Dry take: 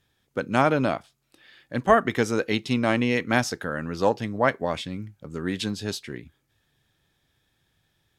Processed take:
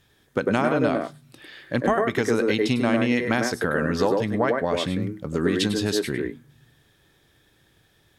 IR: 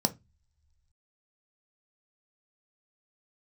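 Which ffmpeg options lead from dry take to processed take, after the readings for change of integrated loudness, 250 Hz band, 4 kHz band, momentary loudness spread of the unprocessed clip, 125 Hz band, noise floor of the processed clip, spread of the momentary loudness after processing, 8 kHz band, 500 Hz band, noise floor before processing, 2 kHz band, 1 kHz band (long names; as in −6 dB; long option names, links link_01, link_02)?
+1.5 dB, +3.5 dB, +3.0 dB, 14 LU, +2.0 dB, −62 dBFS, 7 LU, +2.5 dB, +2.5 dB, −72 dBFS, +0.5 dB, −2.0 dB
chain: -filter_complex "[0:a]acompressor=threshold=-28dB:ratio=6,asplit=2[link_01][link_02];[1:a]atrim=start_sample=2205,asetrate=88200,aresample=44100,adelay=100[link_03];[link_02][link_03]afir=irnorm=-1:irlink=0,volume=-9dB[link_04];[link_01][link_04]amix=inputs=2:normalize=0,volume=8dB"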